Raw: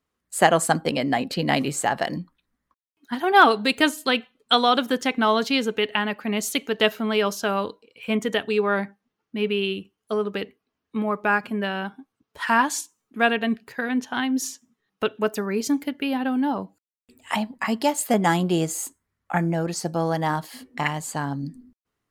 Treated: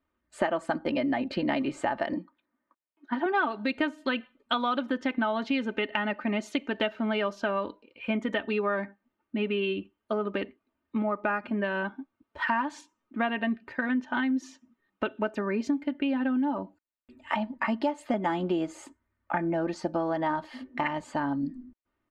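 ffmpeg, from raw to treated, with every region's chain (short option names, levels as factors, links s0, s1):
-filter_complex "[0:a]asettb=1/sr,asplit=3[s0][s1][s2];[s0]atrim=end=2.134[s3];[s1]atrim=start=2.13:end=3.26,asetpts=PTS-STARTPTS,afade=t=in:d=0.004:c=qsin,afade=t=out:st=1.126:d=0.004:c=qsin,highpass=300,tiltshelf=f=1500:g=3.5[s4];[s2]atrim=start=3.256[s5];[s3][s4]acrossfade=d=0.004:c1=hsin:c2=qsin[s6];[s6][s5]acrossfade=d=0.004:c1=qsin:c2=hsin,lowpass=2400,aecho=1:1:3.3:0.66,acompressor=threshold=0.0562:ratio=5"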